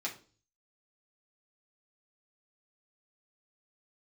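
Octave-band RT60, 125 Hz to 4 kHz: 0.70, 0.50, 0.45, 0.35, 0.30, 0.35 s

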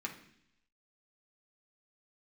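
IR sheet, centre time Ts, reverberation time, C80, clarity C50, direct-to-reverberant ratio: 16 ms, 0.70 s, 13.5 dB, 9.5 dB, -0.5 dB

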